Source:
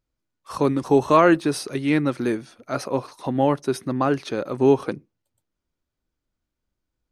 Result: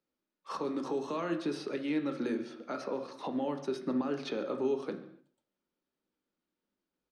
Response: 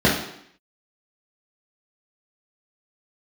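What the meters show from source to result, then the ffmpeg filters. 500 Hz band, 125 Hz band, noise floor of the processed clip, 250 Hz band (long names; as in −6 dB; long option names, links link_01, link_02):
−13.5 dB, −20.0 dB, below −85 dBFS, −12.0 dB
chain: -filter_complex "[0:a]acrossover=split=150|3700[link_01][link_02][link_03];[link_01]acompressor=threshold=-38dB:ratio=4[link_04];[link_02]acompressor=threshold=-27dB:ratio=4[link_05];[link_03]acompressor=threshold=-41dB:ratio=4[link_06];[link_04][link_05][link_06]amix=inputs=3:normalize=0,acrossover=split=220 6100:gain=0.0794 1 0.112[link_07][link_08][link_09];[link_07][link_08][link_09]amix=inputs=3:normalize=0,alimiter=level_in=0.5dB:limit=-24dB:level=0:latency=1:release=206,volume=-0.5dB,asplit=2[link_10][link_11];[link_11]adelay=139.9,volume=-19dB,highshelf=frequency=4000:gain=-3.15[link_12];[link_10][link_12]amix=inputs=2:normalize=0,asplit=2[link_13][link_14];[1:a]atrim=start_sample=2205,afade=type=out:start_time=0.31:duration=0.01,atrim=end_sample=14112,asetrate=38367,aresample=44100[link_15];[link_14][link_15]afir=irnorm=-1:irlink=0,volume=-26dB[link_16];[link_13][link_16]amix=inputs=2:normalize=0,volume=-3.5dB"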